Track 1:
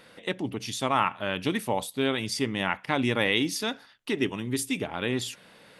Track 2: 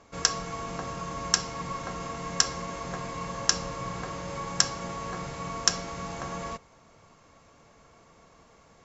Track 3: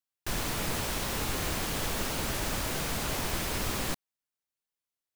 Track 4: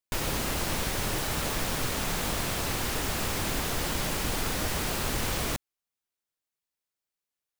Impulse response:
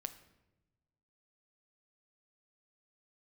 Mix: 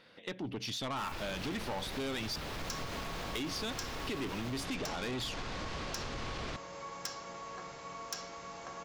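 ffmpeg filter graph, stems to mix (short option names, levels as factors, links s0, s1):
-filter_complex "[0:a]highshelf=f=6700:t=q:w=1.5:g=-10.5,dynaudnorm=f=130:g=7:m=3.76,volume=0.398,asplit=3[s0][s1][s2];[s0]atrim=end=2.36,asetpts=PTS-STARTPTS,afade=t=out:st=2.356:d=0.004:c=hsin[s3];[s1]atrim=start=2.36:end=3.35,asetpts=PTS-STARTPTS,volume=0[s4];[s2]atrim=start=3.35,asetpts=PTS-STARTPTS,afade=t=in:d=0.004:c=hsin[s5];[s3][s4][s5]concat=n=3:v=0:a=1[s6];[1:a]lowpass=5700,bass=f=250:g=-11,treble=f=4000:g=4,adelay=2450,volume=0.398[s7];[2:a]adelay=700,volume=0.188[s8];[3:a]lowpass=f=5200:w=0.5412,lowpass=f=5200:w=1.3066,adelay=1000,volume=0.596[s9];[s8][s9]amix=inputs=2:normalize=0,alimiter=level_in=1.58:limit=0.0631:level=0:latency=1:release=188,volume=0.631,volume=1[s10];[s6][s7][s10]amix=inputs=3:normalize=0,asoftclip=type=tanh:threshold=0.0355,acompressor=threshold=0.0178:ratio=6"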